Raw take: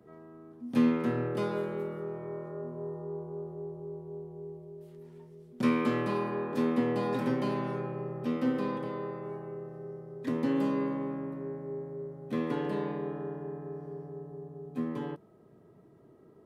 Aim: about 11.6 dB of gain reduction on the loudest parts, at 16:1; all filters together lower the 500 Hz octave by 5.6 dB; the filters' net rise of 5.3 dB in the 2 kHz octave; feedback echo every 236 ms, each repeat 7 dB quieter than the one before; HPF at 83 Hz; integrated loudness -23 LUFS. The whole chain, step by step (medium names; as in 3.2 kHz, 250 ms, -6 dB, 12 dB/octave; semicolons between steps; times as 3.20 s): high-pass 83 Hz; peaking EQ 500 Hz -7.5 dB; peaking EQ 2 kHz +7 dB; compression 16:1, threshold -33 dBFS; feedback delay 236 ms, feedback 45%, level -7 dB; trim +16.5 dB